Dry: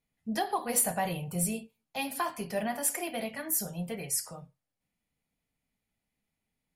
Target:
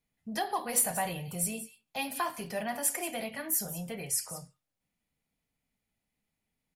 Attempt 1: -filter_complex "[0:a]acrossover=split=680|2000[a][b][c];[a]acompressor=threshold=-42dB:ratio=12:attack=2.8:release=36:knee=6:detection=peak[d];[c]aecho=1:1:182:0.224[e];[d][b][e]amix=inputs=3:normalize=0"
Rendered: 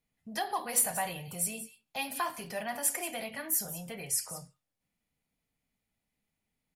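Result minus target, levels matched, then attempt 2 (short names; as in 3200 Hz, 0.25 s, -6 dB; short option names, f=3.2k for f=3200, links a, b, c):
compressor: peak gain reduction +6 dB
-filter_complex "[0:a]acrossover=split=680|2000[a][b][c];[a]acompressor=threshold=-35.5dB:ratio=12:attack=2.8:release=36:knee=6:detection=peak[d];[c]aecho=1:1:182:0.224[e];[d][b][e]amix=inputs=3:normalize=0"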